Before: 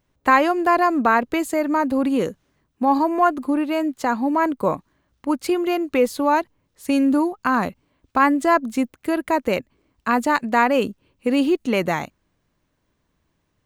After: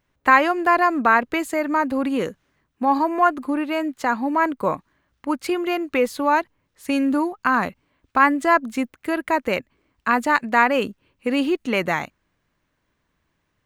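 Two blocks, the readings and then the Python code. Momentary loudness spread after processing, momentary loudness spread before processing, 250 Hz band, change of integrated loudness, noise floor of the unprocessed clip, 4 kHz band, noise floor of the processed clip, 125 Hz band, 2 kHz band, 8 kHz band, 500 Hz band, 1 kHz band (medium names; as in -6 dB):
11 LU, 9 LU, -2.5 dB, -0.5 dB, -71 dBFS, +0.5 dB, -73 dBFS, -3.0 dB, +3.0 dB, -2.5 dB, -2.0 dB, +0.5 dB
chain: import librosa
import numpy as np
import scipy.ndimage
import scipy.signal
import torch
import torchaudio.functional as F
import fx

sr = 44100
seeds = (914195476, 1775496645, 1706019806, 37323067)

y = fx.peak_eq(x, sr, hz=1800.0, db=6.5, octaves=1.8)
y = F.gain(torch.from_numpy(y), -3.0).numpy()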